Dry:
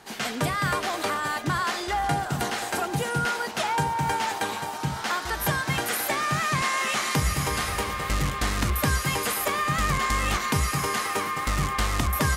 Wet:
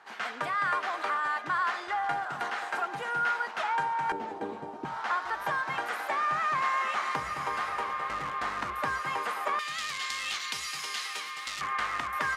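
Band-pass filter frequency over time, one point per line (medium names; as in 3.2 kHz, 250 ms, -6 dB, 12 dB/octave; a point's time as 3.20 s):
band-pass filter, Q 1.3
1.3 kHz
from 4.12 s 340 Hz
from 4.85 s 1.1 kHz
from 9.59 s 3.8 kHz
from 11.61 s 1.5 kHz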